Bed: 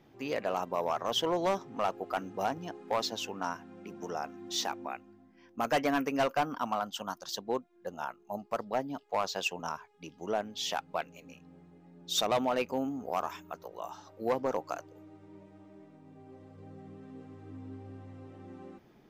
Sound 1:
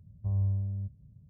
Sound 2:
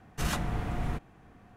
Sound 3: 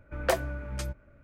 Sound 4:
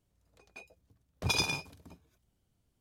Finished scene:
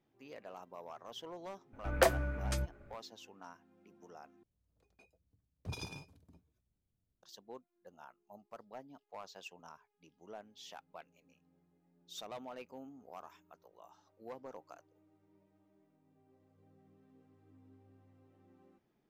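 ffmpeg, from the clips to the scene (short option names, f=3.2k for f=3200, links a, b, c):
-filter_complex "[0:a]volume=-17.5dB[a];[4:a]lowshelf=f=490:g=10[b];[a]asplit=2[c][d];[c]atrim=end=4.434[e];[b]atrim=end=2.8,asetpts=PTS-STARTPTS,volume=-17.5dB[f];[d]atrim=start=7.226[g];[3:a]atrim=end=1.23,asetpts=PTS-STARTPTS,volume=-1dB,afade=t=in:d=0.004:c=hsin,afade=t=out:st=1.226:d=0.004:c=hsin,adelay=1730[h];[e][f]acrossfade=d=0.004:c1=hsin:c2=hsin[i];[i][g]acrossfade=d=0.004:c1=hsin:c2=hsin[j];[j][h]amix=inputs=2:normalize=0"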